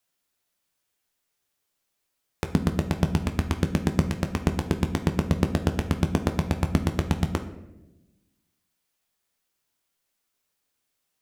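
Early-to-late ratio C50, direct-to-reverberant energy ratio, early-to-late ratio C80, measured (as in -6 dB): 11.0 dB, 6.0 dB, 13.5 dB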